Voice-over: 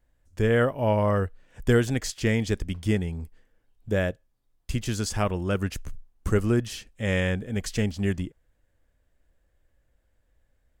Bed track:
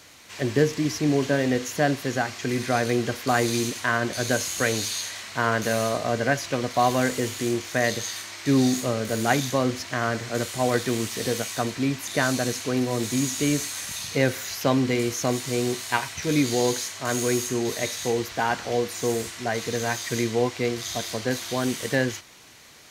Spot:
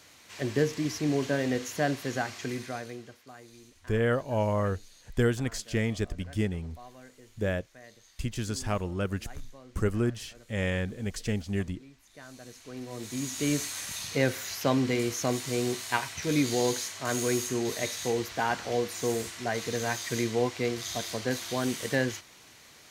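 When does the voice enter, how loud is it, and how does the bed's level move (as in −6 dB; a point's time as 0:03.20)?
3.50 s, −4.5 dB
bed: 0:02.41 −5.5 dB
0:03.37 −28 dB
0:12.06 −28 dB
0:13.52 −4 dB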